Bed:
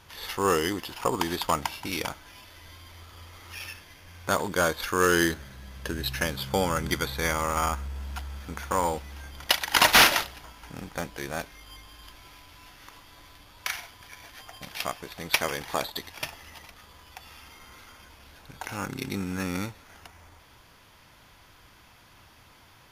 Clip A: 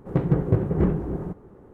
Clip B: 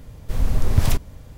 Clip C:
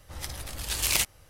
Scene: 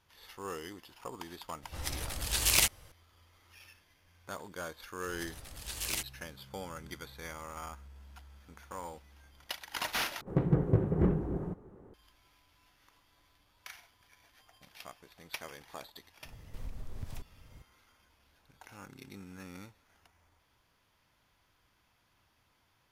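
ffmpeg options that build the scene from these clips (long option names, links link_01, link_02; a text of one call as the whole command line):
ffmpeg -i bed.wav -i cue0.wav -i cue1.wav -i cue2.wav -filter_complex "[3:a]asplit=2[link_01][link_02];[0:a]volume=-17dB[link_03];[2:a]acompressor=threshold=-25dB:ratio=5:attack=7.6:release=412:knee=1:detection=rms[link_04];[link_03]asplit=2[link_05][link_06];[link_05]atrim=end=10.214[link_07];[1:a]atrim=end=1.73,asetpts=PTS-STARTPTS,volume=-6dB[link_08];[link_06]atrim=start=11.936[link_09];[link_01]atrim=end=1.29,asetpts=PTS-STARTPTS,volume=-0.5dB,afade=type=in:duration=0.004:curve=hsin,afade=type=out:start_time=1.286:duration=0.004:curve=hsin,adelay=1630[link_10];[link_02]atrim=end=1.29,asetpts=PTS-STARTPTS,volume=-10.5dB,afade=type=in:duration=0.004:curve=hsin,afade=type=out:start_time=1.286:duration=0.004:curve=hsin,adelay=4980[link_11];[link_04]atrim=end=1.37,asetpts=PTS-STARTPTS,volume=-11.5dB,afade=type=in:duration=0.004:curve=hsin,afade=type=out:start_time=1.366:duration=0.004:curve=hsin,adelay=16250[link_12];[link_07][link_08]acrossfade=duration=0.004:curve1=hsin:curve2=hsin[link_13];[link_13][link_09]acrossfade=duration=0.004:curve1=hsin:curve2=hsin[link_14];[link_14][link_10][link_11][link_12]amix=inputs=4:normalize=0" out.wav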